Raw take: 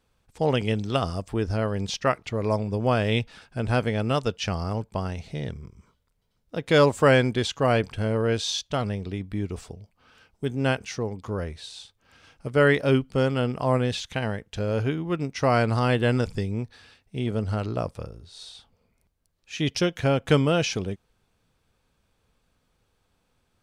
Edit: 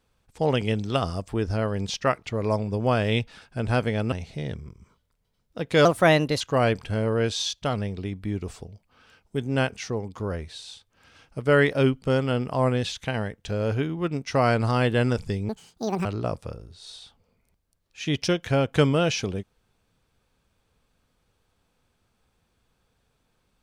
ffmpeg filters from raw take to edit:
ffmpeg -i in.wav -filter_complex "[0:a]asplit=6[link_01][link_02][link_03][link_04][link_05][link_06];[link_01]atrim=end=4.122[link_07];[link_02]atrim=start=5.088:end=6.824[link_08];[link_03]atrim=start=6.82:end=7.49,asetpts=PTS-STARTPTS,asetrate=52920,aresample=44100,atrim=end_sample=24622,asetpts=PTS-STARTPTS[link_09];[link_04]atrim=start=7.486:end=16.574[link_10];[link_05]atrim=start=16.57:end=17.58,asetpts=PTS-STARTPTS,asetrate=78939,aresample=44100,atrim=end_sample=24883,asetpts=PTS-STARTPTS[link_11];[link_06]atrim=start=17.576[link_12];[link_07][link_08]acrossfade=duration=0.004:curve1=hsin:curve2=hsin[link_13];[link_13][link_09]acrossfade=duration=0.004:curve1=hsin:curve2=hsin[link_14];[link_14][link_10]acrossfade=duration=0.004:curve1=hsin:curve2=hsin[link_15];[link_15][link_11]acrossfade=duration=0.004:curve1=hsin:curve2=hsin[link_16];[link_16][link_12]acrossfade=duration=0.004:curve1=hsin:curve2=hsin" out.wav

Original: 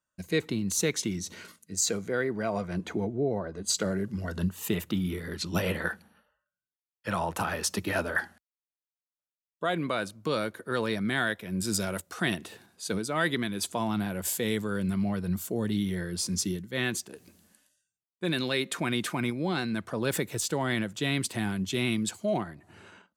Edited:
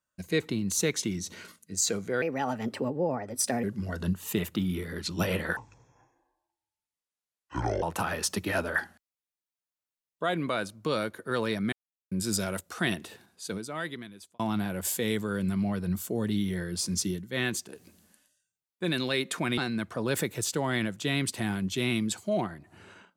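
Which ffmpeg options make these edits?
ffmpeg -i in.wav -filter_complex "[0:a]asplit=9[link_01][link_02][link_03][link_04][link_05][link_06][link_07][link_08][link_09];[link_01]atrim=end=2.224[link_10];[link_02]atrim=start=2.22:end=3.99,asetpts=PTS-STARTPTS,asetrate=55125,aresample=44100[link_11];[link_03]atrim=start=3.986:end=5.924[link_12];[link_04]atrim=start=5.92:end=7.23,asetpts=PTS-STARTPTS,asetrate=25578,aresample=44100,atrim=end_sample=99605,asetpts=PTS-STARTPTS[link_13];[link_05]atrim=start=7.226:end=11.13,asetpts=PTS-STARTPTS,afade=type=out:start_time=3.9:duration=0.004:curve=hsin[link_14];[link_06]atrim=start=11.13:end=11.52,asetpts=PTS-STARTPTS,volume=0[link_15];[link_07]atrim=start=11.52:end=13.8,asetpts=PTS-STARTPTS,afade=type=in:duration=0.004:curve=hsin,afade=type=out:start_time=0.88:duration=1.4[link_16];[link_08]atrim=start=13.8:end=18.982,asetpts=PTS-STARTPTS,afade=type=in:duration=0.004:curve=hsin[link_17];[link_09]atrim=start=19.538[link_18];[link_10][link_11]acrossfade=duration=0.004:curve1=hsin:curve2=hsin[link_19];[link_19][link_12]acrossfade=duration=0.004:curve1=hsin:curve2=hsin[link_20];[link_20][link_13]acrossfade=duration=0.004:curve1=hsin:curve2=hsin[link_21];[link_14][link_15][link_16][link_17]concat=n=4:v=0:a=1[link_22];[link_21][link_22]acrossfade=duration=0.004:curve1=hsin:curve2=hsin[link_23];[link_23][link_18]acrossfade=duration=0.004:curve1=hsin:curve2=hsin" out.wav

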